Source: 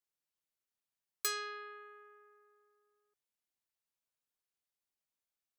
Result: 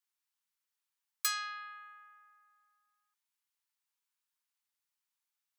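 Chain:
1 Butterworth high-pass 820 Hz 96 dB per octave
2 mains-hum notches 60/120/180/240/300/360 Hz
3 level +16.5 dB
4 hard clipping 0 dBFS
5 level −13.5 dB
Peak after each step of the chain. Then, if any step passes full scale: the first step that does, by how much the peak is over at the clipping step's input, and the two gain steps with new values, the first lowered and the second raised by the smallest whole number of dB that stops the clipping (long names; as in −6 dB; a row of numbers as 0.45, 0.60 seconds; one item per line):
−19.0, −19.0, −2.5, −2.5, −16.0 dBFS
no step passes full scale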